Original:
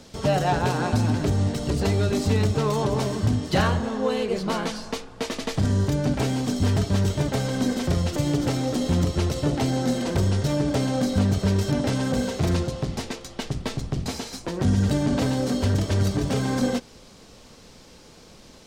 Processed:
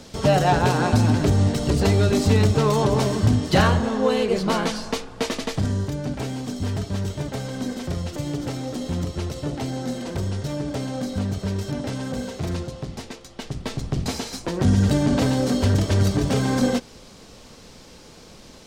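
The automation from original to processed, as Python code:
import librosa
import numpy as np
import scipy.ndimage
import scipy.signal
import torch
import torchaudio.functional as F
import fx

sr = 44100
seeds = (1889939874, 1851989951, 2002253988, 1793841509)

y = fx.gain(x, sr, db=fx.line((5.26, 4.0), (5.92, -4.5), (13.3, -4.5), (14.0, 3.0)))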